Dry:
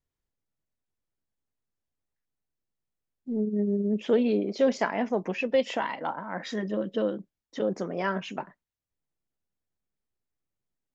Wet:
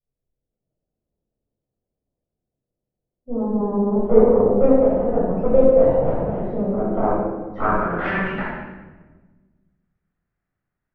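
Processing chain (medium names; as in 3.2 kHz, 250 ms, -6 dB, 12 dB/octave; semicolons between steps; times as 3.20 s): low-pass that closes with the level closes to 910 Hz, closed at -22.5 dBFS; 5.41–6.42 s: waveshaping leveller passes 1; level rider gain up to 8 dB; Chebyshev shaper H 6 -10 dB, 7 -9 dB, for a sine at -5.5 dBFS; low-pass sweep 530 Hz -> 1.7 kHz, 6.57–8.00 s; simulated room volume 870 m³, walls mixed, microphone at 6.7 m; trim -16 dB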